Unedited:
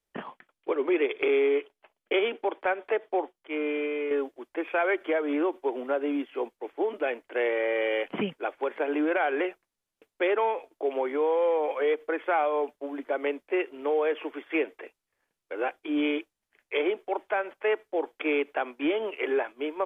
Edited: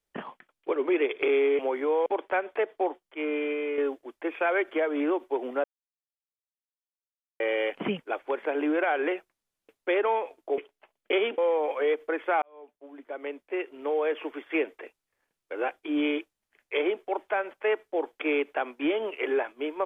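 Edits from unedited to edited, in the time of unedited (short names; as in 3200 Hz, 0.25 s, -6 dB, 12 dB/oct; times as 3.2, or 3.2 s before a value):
1.59–2.39 swap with 10.91–11.38
5.97–7.73 mute
12.42–14.24 fade in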